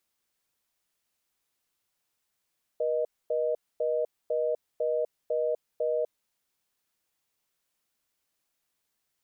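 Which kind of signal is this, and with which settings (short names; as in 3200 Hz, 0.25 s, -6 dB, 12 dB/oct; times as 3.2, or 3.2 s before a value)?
call progress tone reorder tone, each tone -27.5 dBFS 3.49 s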